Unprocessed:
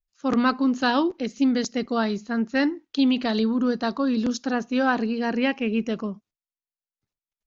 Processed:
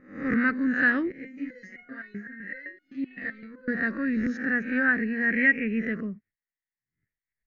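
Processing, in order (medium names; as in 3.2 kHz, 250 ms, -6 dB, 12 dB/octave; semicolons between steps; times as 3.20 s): reverse spectral sustain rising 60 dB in 0.50 s; FFT filter 130 Hz 0 dB, 480 Hz -8 dB, 950 Hz -24 dB, 1.9 kHz +13 dB, 3.2 kHz -24 dB; 1.12–3.68 s: resonator arpeggio 7.8 Hz 68–720 Hz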